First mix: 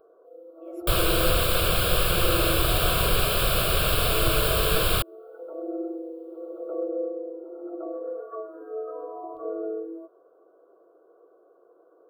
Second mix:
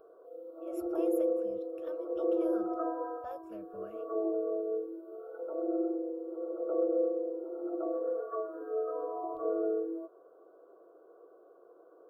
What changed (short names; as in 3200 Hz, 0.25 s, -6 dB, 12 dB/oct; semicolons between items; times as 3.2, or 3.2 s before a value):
speech: add tone controls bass +4 dB, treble +6 dB; second sound: muted